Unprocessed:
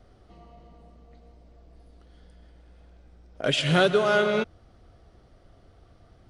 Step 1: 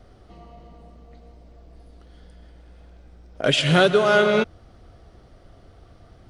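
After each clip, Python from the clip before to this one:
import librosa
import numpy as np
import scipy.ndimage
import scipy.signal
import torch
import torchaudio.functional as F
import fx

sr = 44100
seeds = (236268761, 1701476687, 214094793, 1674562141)

y = fx.rider(x, sr, range_db=10, speed_s=0.5)
y = y * librosa.db_to_amplitude(6.0)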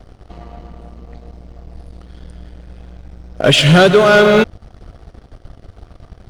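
y = fx.low_shelf(x, sr, hz=110.0, db=7.5)
y = fx.leveller(y, sr, passes=2)
y = y * librosa.db_to_amplitude(2.5)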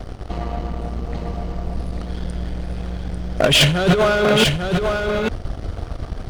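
y = fx.over_compress(x, sr, threshold_db=-14.0, ratio=-0.5)
y = 10.0 ** (-12.0 / 20.0) * np.tanh(y / 10.0 ** (-12.0 / 20.0))
y = y + 10.0 ** (-5.0 / 20.0) * np.pad(y, (int(845 * sr / 1000.0), 0))[:len(y)]
y = y * librosa.db_to_amplitude(3.5)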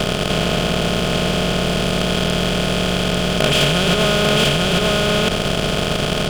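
y = fx.bin_compress(x, sr, power=0.2)
y = y * librosa.db_to_amplitude(-7.5)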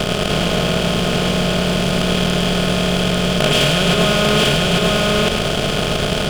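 y = x + 10.0 ** (-6.0 / 20.0) * np.pad(x, (int(105 * sr / 1000.0), 0))[:len(x)]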